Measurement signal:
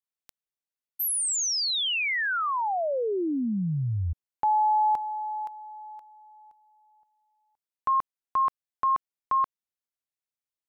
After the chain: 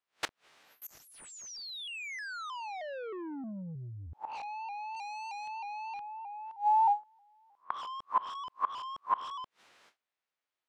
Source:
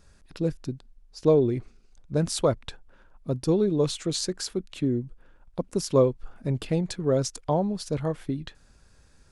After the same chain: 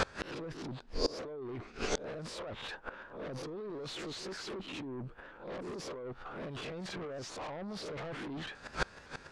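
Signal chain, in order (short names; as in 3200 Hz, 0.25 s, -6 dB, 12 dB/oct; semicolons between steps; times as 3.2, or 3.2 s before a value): spectral swells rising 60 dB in 0.30 s; gate with hold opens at -52 dBFS, closes at -54 dBFS, hold 0.399 s, range -30 dB; bell 6200 Hz -3 dB 1.7 oct; negative-ratio compressor -33 dBFS, ratio -1; overdrive pedal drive 30 dB, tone 3000 Hz, clips at -10.5 dBFS; sine folder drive 7 dB, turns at -11.5 dBFS; flipped gate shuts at -17 dBFS, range -27 dB; air absorption 73 m; shaped vibrato saw up 3.2 Hz, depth 100 cents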